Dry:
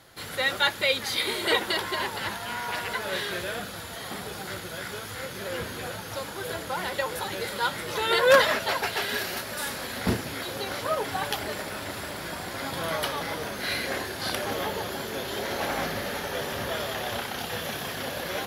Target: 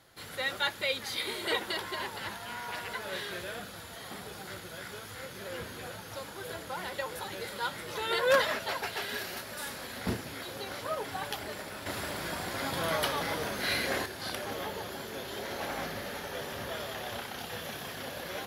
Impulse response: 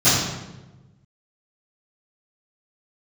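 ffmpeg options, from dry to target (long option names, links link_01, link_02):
-filter_complex "[0:a]asettb=1/sr,asplit=3[link_01][link_02][link_03];[link_01]atrim=end=11.864[link_04];[link_02]atrim=start=11.86:end=14.06,asetpts=PTS-STARTPTS,afade=type=in:duration=0.004:curve=qsin,afade=type=out:start_time=2.196:duration=0.004:curve=qsin,acontrast=48[link_05];[link_03]atrim=start=14.056[link_06];[link_04][link_05]acrossfade=duration=0.004:curve1=hsin:curve2=qsin[link_07];[link_07][link_06]acrossfade=duration=0.004:curve1=qsin:curve2=hsin,volume=-7dB"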